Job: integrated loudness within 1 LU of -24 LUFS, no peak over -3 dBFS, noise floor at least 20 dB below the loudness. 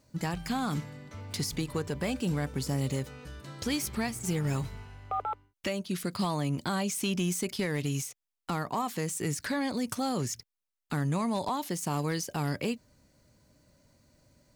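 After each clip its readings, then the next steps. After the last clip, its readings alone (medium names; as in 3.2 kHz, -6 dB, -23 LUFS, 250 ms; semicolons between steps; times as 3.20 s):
clipped samples 0.4%; clipping level -23.0 dBFS; loudness -32.5 LUFS; peak level -23.0 dBFS; loudness target -24.0 LUFS
-> clip repair -23 dBFS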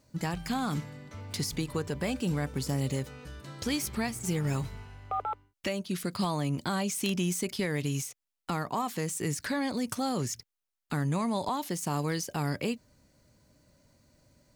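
clipped samples 0.0%; loudness -32.5 LUFS; peak level -14.0 dBFS; loudness target -24.0 LUFS
-> trim +8.5 dB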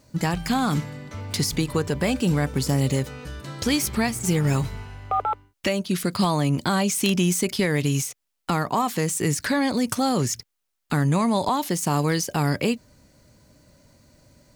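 loudness -24.0 LUFS; peak level -5.5 dBFS; noise floor -78 dBFS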